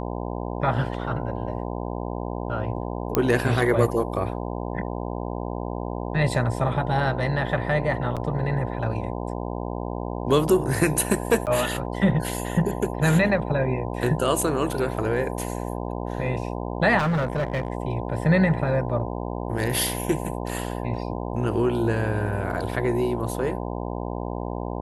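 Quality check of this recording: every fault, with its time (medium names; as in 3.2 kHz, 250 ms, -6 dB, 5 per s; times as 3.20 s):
buzz 60 Hz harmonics 17 -30 dBFS
3.15 s: pop -6 dBFS
8.16–8.17 s: dropout 7 ms
11.46–11.47 s: dropout 8.7 ms
16.98–17.70 s: clipped -20 dBFS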